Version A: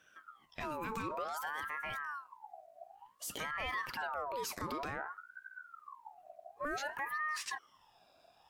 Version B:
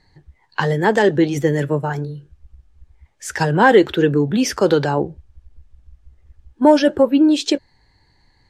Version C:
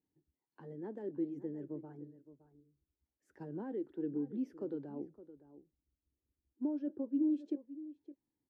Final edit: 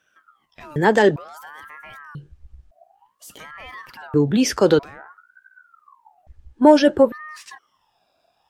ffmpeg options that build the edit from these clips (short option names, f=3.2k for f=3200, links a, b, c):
-filter_complex "[1:a]asplit=4[a][b][c][d];[0:a]asplit=5[e][f][g][h][i];[e]atrim=end=0.762[j];[a]atrim=start=0.758:end=1.162[k];[f]atrim=start=1.158:end=2.152[l];[b]atrim=start=2.148:end=2.712[m];[g]atrim=start=2.708:end=4.142[n];[c]atrim=start=4.138:end=4.792[o];[h]atrim=start=4.788:end=6.272[p];[d]atrim=start=6.268:end=7.122[q];[i]atrim=start=7.118[r];[j][k]acrossfade=d=0.004:c1=hsin:c2=hsin[s];[s][l]acrossfade=d=0.004:c1=hsin:c2=hsin[t];[t][m]acrossfade=d=0.004:c1=hsin:c2=hsin[u];[u][n]acrossfade=d=0.004:c1=hsin:c2=hsin[v];[v][o]acrossfade=d=0.004:c1=hsin:c2=hsin[w];[w][p]acrossfade=d=0.004:c1=hsin:c2=hsin[x];[x][q]acrossfade=d=0.004:c1=hsin:c2=hsin[y];[y][r]acrossfade=d=0.004:c1=hsin:c2=hsin"